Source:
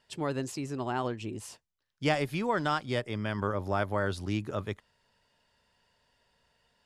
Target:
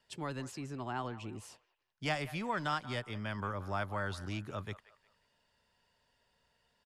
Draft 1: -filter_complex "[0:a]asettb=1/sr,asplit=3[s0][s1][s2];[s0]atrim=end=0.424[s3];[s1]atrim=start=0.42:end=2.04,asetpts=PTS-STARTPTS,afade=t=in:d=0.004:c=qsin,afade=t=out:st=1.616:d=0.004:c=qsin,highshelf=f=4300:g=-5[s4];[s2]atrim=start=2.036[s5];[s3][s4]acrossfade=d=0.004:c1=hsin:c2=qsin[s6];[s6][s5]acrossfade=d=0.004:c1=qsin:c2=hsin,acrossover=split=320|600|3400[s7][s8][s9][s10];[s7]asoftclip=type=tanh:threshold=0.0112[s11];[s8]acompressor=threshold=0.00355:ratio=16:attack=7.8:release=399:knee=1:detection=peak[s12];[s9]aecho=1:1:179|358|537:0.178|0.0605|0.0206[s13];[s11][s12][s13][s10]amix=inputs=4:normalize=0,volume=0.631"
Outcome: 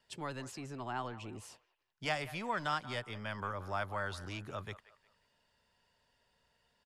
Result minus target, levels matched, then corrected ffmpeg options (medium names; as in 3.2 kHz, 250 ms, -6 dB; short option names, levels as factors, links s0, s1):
saturation: distortion +8 dB
-filter_complex "[0:a]asettb=1/sr,asplit=3[s0][s1][s2];[s0]atrim=end=0.424[s3];[s1]atrim=start=0.42:end=2.04,asetpts=PTS-STARTPTS,afade=t=in:d=0.004:c=qsin,afade=t=out:st=1.616:d=0.004:c=qsin,highshelf=f=4300:g=-5[s4];[s2]atrim=start=2.036[s5];[s3][s4]acrossfade=d=0.004:c1=hsin:c2=qsin[s6];[s6][s5]acrossfade=d=0.004:c1=qsin:c2=hsin,acrossover=split=320|600|3400[s7][s8][s9][s10];[s7]asoftclip=type=tanh:threshold=0.0316[s11];[s8]acompressor=threshold=0.00355:ratio=16:attack=7.8:release=399:knee=1:detection=peak[s12];[s9]aecho=1:1:179|358|537:0.178|0.0605|0.0206[s13];[s11][s12][s13][s10]amix=inputs=4:normalize=0,volume=0.631"